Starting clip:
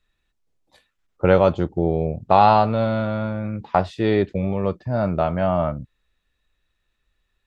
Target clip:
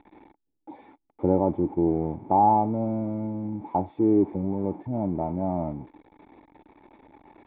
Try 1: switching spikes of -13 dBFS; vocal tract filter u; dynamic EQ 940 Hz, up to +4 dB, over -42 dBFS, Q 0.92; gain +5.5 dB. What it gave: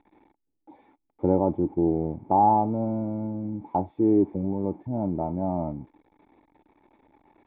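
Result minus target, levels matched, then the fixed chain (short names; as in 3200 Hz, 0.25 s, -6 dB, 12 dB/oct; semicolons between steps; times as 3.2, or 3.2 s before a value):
switching spikes: distortion -7 dB
switching spikes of -5.5 dBFS; vocal tract filter u; dynamic EQ 940 Hz, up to +4 dB, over -42 dBFS, Q 0.92; gain +5.5 dB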